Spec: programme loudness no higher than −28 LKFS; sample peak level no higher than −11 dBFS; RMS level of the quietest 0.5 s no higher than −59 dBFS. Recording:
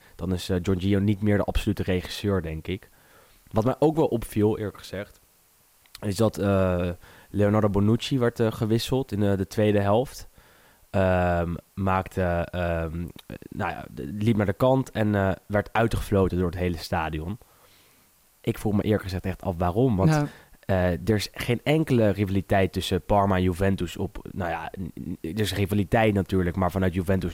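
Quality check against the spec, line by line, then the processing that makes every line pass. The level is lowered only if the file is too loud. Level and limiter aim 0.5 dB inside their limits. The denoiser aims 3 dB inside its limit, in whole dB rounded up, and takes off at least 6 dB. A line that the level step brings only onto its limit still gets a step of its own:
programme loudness −25.5 LKFS: out of spec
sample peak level −8.5 dBFS: out of spec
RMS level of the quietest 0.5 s −61 dBFS: in spec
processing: level −3 dB

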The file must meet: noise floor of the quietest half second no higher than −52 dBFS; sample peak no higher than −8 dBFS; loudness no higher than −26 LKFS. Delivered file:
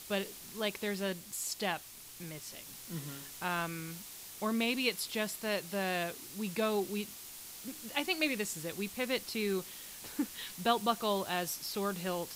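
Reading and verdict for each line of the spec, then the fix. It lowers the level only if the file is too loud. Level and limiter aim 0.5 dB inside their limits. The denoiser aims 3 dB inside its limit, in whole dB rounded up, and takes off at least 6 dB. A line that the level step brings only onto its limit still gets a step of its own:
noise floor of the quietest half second −49 dBFS: out of spec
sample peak −14.5 dBFS: in spec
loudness −35.5 LKFS: in spec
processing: broadband denoise 6 dB, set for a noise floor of −49 dBFS

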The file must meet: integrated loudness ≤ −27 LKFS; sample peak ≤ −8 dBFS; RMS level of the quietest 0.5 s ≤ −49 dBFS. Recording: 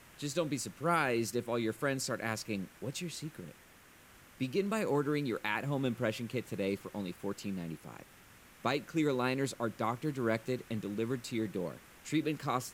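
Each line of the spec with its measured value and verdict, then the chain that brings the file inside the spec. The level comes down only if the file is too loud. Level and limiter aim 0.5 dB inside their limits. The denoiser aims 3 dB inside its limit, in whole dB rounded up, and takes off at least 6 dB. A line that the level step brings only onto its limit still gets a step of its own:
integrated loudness −35.5 LKFS: in spec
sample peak −17.0 dBFS: in spec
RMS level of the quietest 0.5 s −59 dBFS: in spec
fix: no processing needed

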